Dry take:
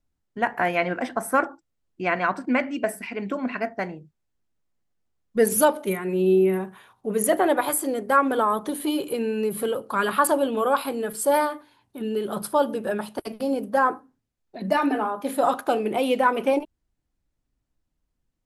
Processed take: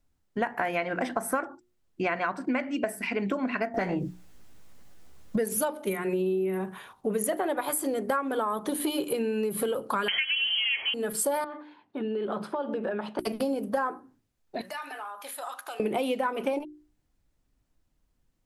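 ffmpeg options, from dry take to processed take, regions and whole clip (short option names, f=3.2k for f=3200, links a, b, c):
-filter_complex "[0:a]asettb=1/sr,asplit=3[a][b][c];[a]atrim=end=3.744[d];[b]atrim=start=3.74:end=5.38,asetpts=PTS-STARTPTS,afade=t=in:d=0.004:c=qsin,afade=t=out:st=1.636:d=0.004:c=qsin,asplit=2[e][f];[f]adelay=16,volume=-5.5dB[g];[e][g]amix=inputs=2:normalize=0,atrim=end_sample=72324,acompressor=threshold=-41dB:ratio=6:attack=3.2:release=140:knee=1:detection=peak,aeval=exprs='0.15*sin(PI/2*5.62*val(0)/0.15)':c=same[h];[c]atrim=start=5.376[i];[d][h]acrossfade=d=0.004:c1=hsin:c2=qsin[j];[j][i]acrossfade=d=0.004:c1=qsin:c2=hsin,asettb=1/sr,asplit=3[k][l][m];[k]atrim=end=10.084[n];[l]atrim=start=10.08:end=10.94,asetpts=PTS-STARTPTS,afade=t=in:d=0.004:c=qsin,afade=t=out:st=0.856:d=0.004:c=qsin,aeval=exprs='val(0)+0.5*0.0422*sgn(val(0))':c=same,aemphasis=mode=reproduction:type=riaa,lowpass=f=2.8k:t=q:w=0.5098,lowpass=f=2.8k:t=q:w=0.6013,lowpass=f=2.8k:t=q:w=0.9,lowpass=f=2.8k:t=q:w=2.563,afreqshift=-3300[o];[m]atrim=start=10.936[p];[n][o]acrossfade=d=0.004:c1=hsin:c2=qsin[q];[q][p]acrossfade=d=0.004:c1=qsin:c2=hsin,asettb=1/sr,asplit=3[r][s][t];[r]atrim=end=11.444[u];[s]atrim=start=11.44:end=13.19,asetpts=PTS-STARTPTS,afade=t=in:d=0.004:c=qsin,afade=t=out:st=1.746:d=0.004:c=qsin,acompressor=threshold=-30dB:ratio=10:attack=3.2:release=140:knee=1:detection=peak,highpass=200,lowpass=2.7k[v];[t]atrim=start=13.186[w];[u][v]acrossfade=d=0.004:c1=hsin:c2=qsin[x];[x][w]acrossfade=d=0.004:c1=qsin:c2=hsin,asettb=1/sr,asplit=3[y][z][aa];[y]atrim=end=14.614[ab];[z]atrim=start=14.61:end=15.8,asetpts=PTS-STARTPTS,afade=t=in:d=0.004:c=qsin,afade=t=out:st=1.186:d=0.004:c=qsin,highpass=1.1k,highshelf=f=5.6k:g=4.5,acompressor=threshold=-46dB:ratio=2.5:attack=3.2:release=140:knee=1:detection=peak[ac];[aa]atrim=start=15.796[ad];[ab][ac]acrossfade=d=0.004:c1=hsin:c2=qsin[ae];[ae][ad]acrossfade=d=0.004:c1=qsin:c2=hsin,bandreject=f=60:t=h:w=6,bandreject=f=120:t=h:w=6,bandreject=f=180:t=h:w=6,bandreject=f=240:t=h:w=6,bandreject=f=300:t=h:w=6,bandreject=f=360:t=h:w=6,acompressor=threshold=-30dB:ratio=10,volume=5dB"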